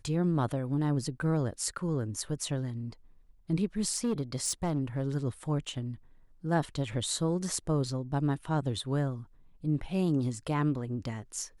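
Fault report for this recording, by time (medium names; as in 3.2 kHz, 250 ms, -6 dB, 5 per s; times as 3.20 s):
3.91–5.03 s: clipped -24.5 dBFS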